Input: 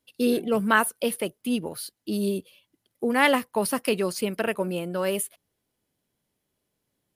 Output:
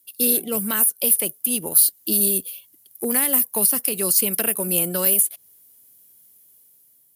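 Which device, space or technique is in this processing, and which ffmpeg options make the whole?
FM broadcast chain: -filter_complex "[0:a]highpass=56,dynaudnorm=framelen=410:gausssize=5:maxgain=7dB,acrossover=split=420|2300|6400[link_01][link_02][link_03][link_04];[link_01]acompressor=threshold=-22dB:ratio=4[link_05];[link_02]acompressor=threshold=-28dB:ratio=4[link_06];[link_03]acompressor=threshold=-34dB:ratio=4[link_07];[link_04]acompressor=threshold=-35dB:ratio=4[link_08];[link_05][link_06][link_07][link_08]amix=inputs=4:normalize=0,aemphasis=mode=production:type=50fm,alimiter=limit=-13dB:level=0:latency=1:release=223,asoftclip=type=hard:threshold=-15dB,lowpass=frequency=15000:width=0.5412,lowpass=frequency=15000:width=1.3066,aemphasis=mode=production:type=50fm,volume=-1.5dB"

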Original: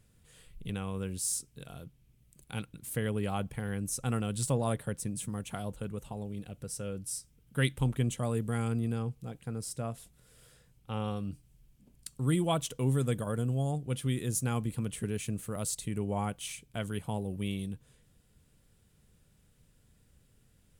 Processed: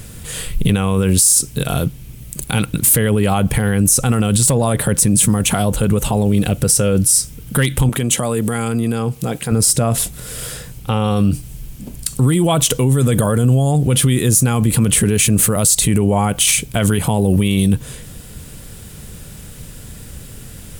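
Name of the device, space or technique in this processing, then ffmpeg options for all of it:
loud club master: -filter_complex "[0:a]acompressor=threshold=-33dB:ratio=2.5,asoftclip=type=hard:threshold=-24.5dB,alimiter=level_in=35.5dB:limit=-1dB:release=50:level=0:latency=1,asettb=1/sr,asplit=3[link_01][link_02][link_03];[link_01]atrim=end=7.894[link_04];[link_02]atrim=start=7.89:end=9.52,asetpts=PTS-STARTPTS,afade=type=in:duration=0.004:curve=qsin,afade=type=out:start_time=1.626:duration=0.004:curve=qsin,highpass=frequency=250:poles=1[link_05];[link_03]atrim=start=9.516[link_06];[link_04][link_05]acrossfade=duration=0.004:curve1=hsin:curve2=qsin[link_07];[link_07][link_06]acrossfade=duration=0.004:curve1=qsin:curve2=hsin,highshelf=frequency=7100:gain=6,volume=-5.5dB"

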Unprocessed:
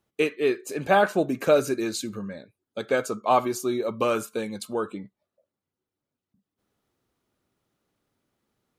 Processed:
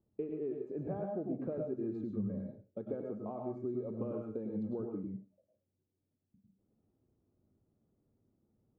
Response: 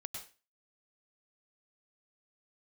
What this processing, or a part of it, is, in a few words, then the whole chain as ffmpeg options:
television next door: -filter_complex "[0:a]acompressor=threshold=-36dB:ratio=4,lowpass=410[link_01];[1:a]atrim=start_sample=2205[link_02];[link_01][link_02]afir=irnorm=-1:irlink=0,volume=5.5dB"

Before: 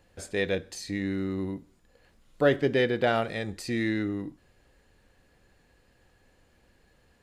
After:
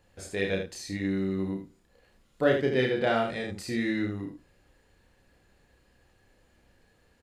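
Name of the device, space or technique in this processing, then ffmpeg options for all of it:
slapback doubling: -filter_complex "[0:a]asplit=3[link_01][link_02][link_03];[link_02]adelay=31,volume=-3.5dB[link_04];[link_03]adelay=78,volume=-6dB[link_05];[link_01][link_04][link_05]amix=inputs=3:normalize=0,asettb=1/sr,asplit=3[link_06][link_07][link_08];[link_06]atrim=end=3.004[link_09];[link_07]atrim=start=3:end=3.53,asetpts=PTS-STARTPTS,afade=type=in:duration=0.004:curve=qsin,afade=type=out:start_time=0.526:duration=0.004:curve=qsin,lowpass=frequency=11000:width=0.5412,lowpass=frequency=11000:width=1.3066[link_10];[link_08]atrim=start=3.526[link_11];[link_09][link_10]acrossfade=duration=0.004:curve1=hsin:curve2=qsin[link_12];[link_12][link_11]acrossfade=duration=0.004:curve1=qsin:curve2=hsin,volume=-3dB"

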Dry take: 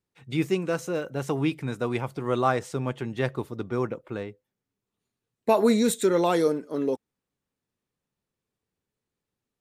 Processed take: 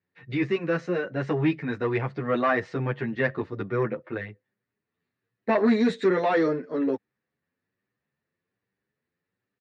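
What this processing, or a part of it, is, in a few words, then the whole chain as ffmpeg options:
barber-pole flanger into a guitar amplifier: -filter_complex "[0:a]asplit=2[link_01][link_02];[link_02]adelay=9,afreqshift=1.2[link_03];[link_01][link_03]amix=inputs=2:normalize=1,asoftclip=type=tanh:threshold=-19dB,highpass=92,equalizer=frequency=870:width_type=q:width=4:gain=-3,equalizer=frequency=1800:width_type=q:width=4:gain=10,equalizer=frequency=3300:width_type=q:width=4:gain=-7,lowpass=frequency=4100:width=0.5412,lowpass=frequency=4100:width=1.3066,volume=5dB"

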